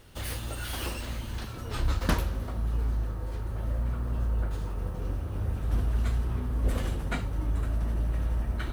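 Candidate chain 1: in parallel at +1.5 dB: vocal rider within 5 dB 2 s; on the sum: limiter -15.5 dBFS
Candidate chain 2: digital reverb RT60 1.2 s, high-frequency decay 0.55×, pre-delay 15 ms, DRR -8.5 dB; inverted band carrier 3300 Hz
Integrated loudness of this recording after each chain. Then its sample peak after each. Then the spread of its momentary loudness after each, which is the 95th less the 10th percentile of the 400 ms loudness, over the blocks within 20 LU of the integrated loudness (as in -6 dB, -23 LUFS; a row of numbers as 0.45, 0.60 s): -26.0, -16.0 LUFS; -15.5, -3.5 dBFS; 3, 11 LU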